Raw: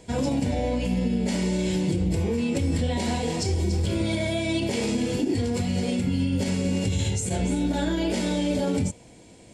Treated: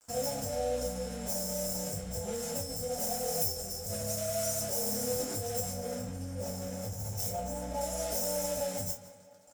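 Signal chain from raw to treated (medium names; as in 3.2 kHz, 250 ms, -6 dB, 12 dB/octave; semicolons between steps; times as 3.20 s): tracing distortion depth 0.33 ms; Chebyshev band-stop 890–5300 Hz, order 5; comb 1.5 ms, depth 92%; crossover distortion -42 dBFS; 5.74–7.81 s: treble shelf 4 kHz -11 dB; tape echo 171 ms, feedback 64%, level -19.5 dB, low-pass 5.6 kHz; peak limiter -22.5 dBFS, peak gain reduction 10 dB; tilt shelf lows -9 dB, about 910 Hz; gated-style reverb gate 80 ms falling, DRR -3.5 dB; trim -5 dB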